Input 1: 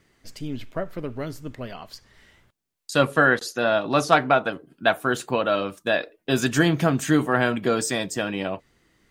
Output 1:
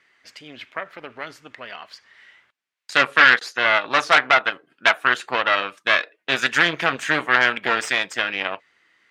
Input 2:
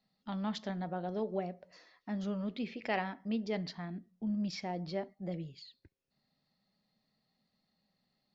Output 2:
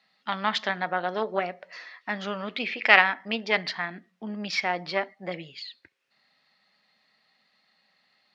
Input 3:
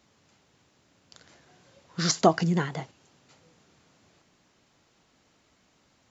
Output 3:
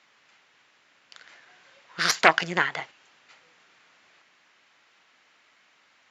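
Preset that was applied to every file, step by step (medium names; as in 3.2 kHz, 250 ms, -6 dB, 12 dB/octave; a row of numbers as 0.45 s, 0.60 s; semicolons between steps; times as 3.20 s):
Chebyshev shaper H 5 -22 dB, 6 -10 dB, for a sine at -3.5 dBFS; band-pass filter 2 kHz, Q 1.2; peak normalisation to -1.5 dBFS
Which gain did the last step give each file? +5.0 dB, +17.5 dB, +7.5 dB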